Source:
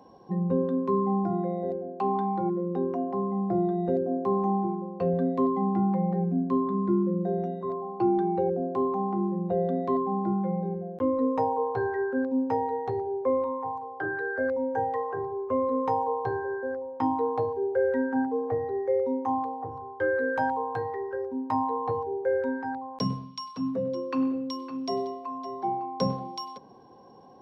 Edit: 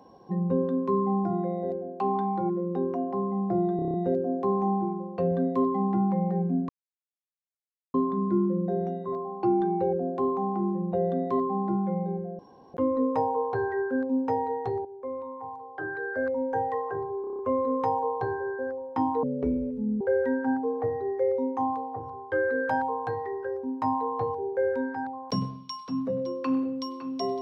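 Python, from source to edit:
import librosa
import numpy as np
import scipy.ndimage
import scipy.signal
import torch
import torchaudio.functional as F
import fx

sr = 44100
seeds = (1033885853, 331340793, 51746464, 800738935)

y = fx.edit(x, sr, fx.stutter(start_s=3.76, slice_s=0.03, count=7),
    fx.insert_silence(at_s=6.51, length_s=1.25),
    fx.insert_room_tone(at_s=10.96, length_s=0.35),
    fx.fade_in_from(start_s=13.07, length_s=1.56, floor_db=-14.0),
    fx.stutter(start_s=15.43, slice_s=0.03, count=7),
    fx.speed_span(start_s=17.27, length_s=0.42, speed=0.54), tone=tone)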